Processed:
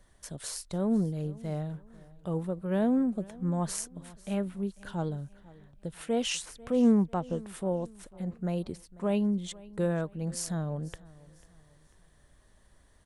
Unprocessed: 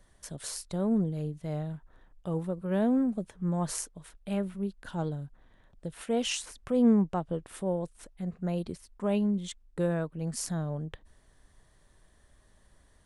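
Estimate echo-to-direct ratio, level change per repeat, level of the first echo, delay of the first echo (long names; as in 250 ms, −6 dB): −21.0 dB, −8.5 dB, −21.5 dB, 494 ms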